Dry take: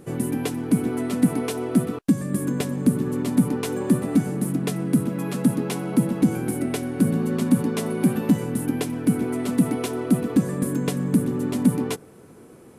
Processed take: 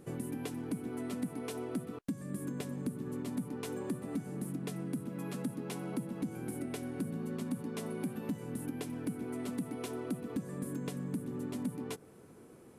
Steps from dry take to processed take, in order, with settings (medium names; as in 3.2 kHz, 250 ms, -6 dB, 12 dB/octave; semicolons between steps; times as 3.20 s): compression 3:1, threshold -28 dBFS, peak gain reduction 12 dB; trim -8.5 dB